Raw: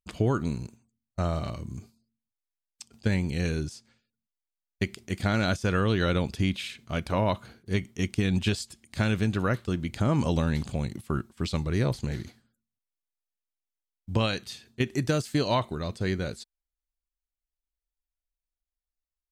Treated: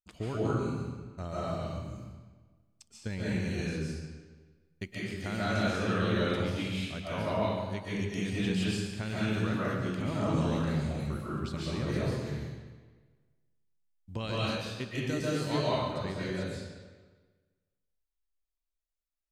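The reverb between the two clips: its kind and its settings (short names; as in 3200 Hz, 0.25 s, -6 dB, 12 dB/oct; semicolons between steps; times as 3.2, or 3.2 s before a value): digital reverb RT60 1.4 s, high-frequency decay 0.85×, pre-delay 0.1 s, DRR -8 dB; gain -11.5 dB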